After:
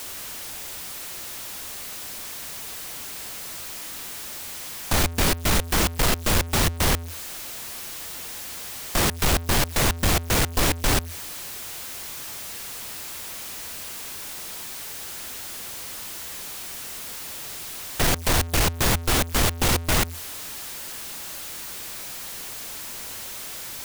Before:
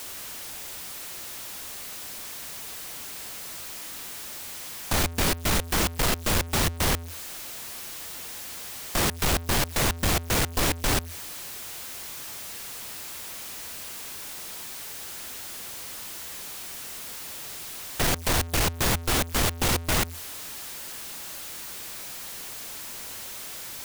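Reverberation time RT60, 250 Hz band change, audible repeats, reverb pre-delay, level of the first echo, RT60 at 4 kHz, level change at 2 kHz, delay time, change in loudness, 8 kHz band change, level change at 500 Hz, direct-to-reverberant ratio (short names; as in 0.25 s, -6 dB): none, +2.5 dB, none, none, none, none, +2.5 dB, none, +2.5 dB, +2.5 dB, +2.5 dB, none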